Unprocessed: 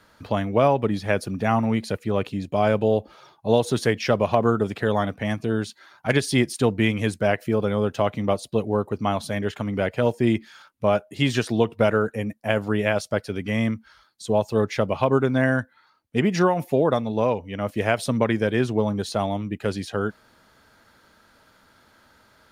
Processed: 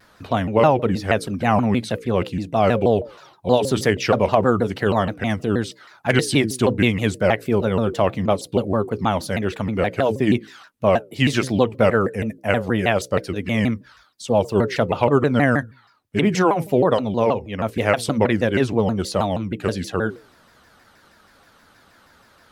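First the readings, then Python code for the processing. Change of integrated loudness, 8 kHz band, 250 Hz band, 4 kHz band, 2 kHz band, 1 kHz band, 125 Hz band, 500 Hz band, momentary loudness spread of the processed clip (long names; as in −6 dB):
+3.0 dB, +4.0 dB, +3.0 dB, +3.5 dB, +3.5 dB, +4.0 dB, +3.0 dB, +3.0 dB, 7 LU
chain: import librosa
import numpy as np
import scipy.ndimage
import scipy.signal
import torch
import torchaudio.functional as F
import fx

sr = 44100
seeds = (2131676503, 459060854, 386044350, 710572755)

y = fx.hum_notches(x, sr, base_hz=60, count=9)
y = fx.vibrato_shape(y, sr, shape='saw_down', rate_hz=6.3, depth_cents=250.0)
y = y * librosa.db_to_amplitude(3.5)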